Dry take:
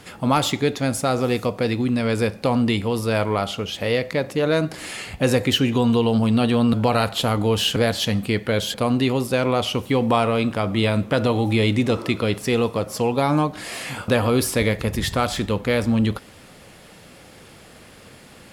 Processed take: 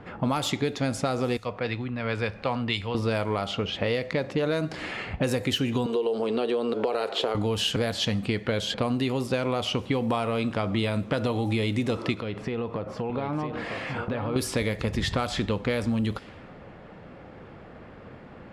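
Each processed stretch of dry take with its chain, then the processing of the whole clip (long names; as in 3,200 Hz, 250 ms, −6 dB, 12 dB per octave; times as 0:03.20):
0:01.37–0:02.95: parametric band 260 Hz −11 dB 2.8 octaves + upward compression, threshold −29 dBFS + multiband upward and downward expander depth 100%
0:05.86–0:07.35: high-pass with resonance 410 Hz, resonance Q 4.7 + downward compressor 2 to 1, threshold −22 dBFS
0:12.14–0:14.36: downward compressor, threshold −28 dBFS + single-tap delay 955 ms −7.5 dB
whole clip: low-pass that shuts in the quiet parts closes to 1,300 Hz, open at −15 dBFS; downward compressor, threshold −25 dBFS; level +2 dB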